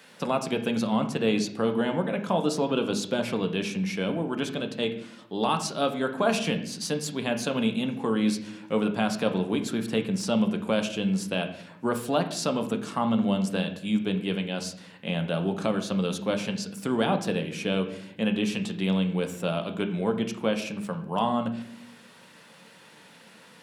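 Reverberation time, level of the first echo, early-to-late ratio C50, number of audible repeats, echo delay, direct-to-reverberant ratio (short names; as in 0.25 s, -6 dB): 0.70 s, none, 10.5 dB, none, none, 5.0 dB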